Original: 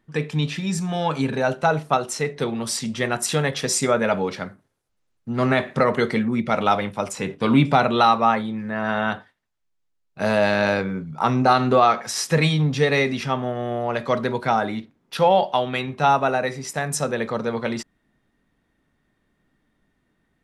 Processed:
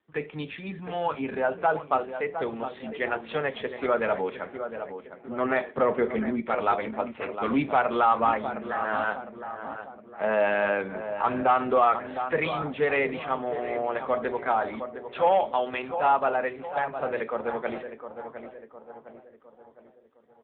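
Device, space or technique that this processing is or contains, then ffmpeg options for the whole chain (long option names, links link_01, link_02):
telephone: -filter_complex "[0:a]asettb=1/sr,asplit=3[link_01][link_02][link_03];[link_01]atrim=end=5.704[link_04];[link_02]atrim=start=5.7:end=6.4,asetpts=PTS-STARTPTS,afade=type=in:duration=0.004:curve=qsin,afade=type=out:start_time=0.696:duration=0.004:curve=qsin,tiltshelf=frequency=790:gain=4.5[link_05];[link_03]atrim=start=6.396[link_06];[link_04][link_05]acrossfade=duration=0.004:curve1=hsin:curve2=qsin[link_07];[link_07][link_06]acrossfade=duration=0.004:curve1=qsin:curve2=hsin,highpass=340,lowpass=3100,asplit=2[link_08][link_09];[link_09]adelay=709,lowpass=frequency=1700:poles=1,volume=-9.5dB,asplit=2[link_10][link_11];[link_11]adelay=709,lowpass=frequency=1700:poles=1,volume=0.5,asplit=2[link_12][link_13];[link_13]adelay=709,lowpass=frequency=1700:poles=1,volume=0.5,asplit=2[link_14][link_15];[link_15]adelay=709,lowpass=frequency=1700:poles=1,volume=0.5,asplit=2[link_16][link_17];[link_17]adelay=709,lowpass=frequency=1700:poles=1,volume=0.5,asplit=2[link_18][link_19];[link_19]adelay=709,lowpass=frequency=1700:poles=1,volume=0.5[link_20];[link_08][link_10][link_12][link_14][link_16][link_18][link_20]amix=inputs=7:normalize=0,asoftclip=type=tanh:threshold=-9dB,volume=-2dB" -ar 8000 -c:a libopencore_amrnb -b:a 6700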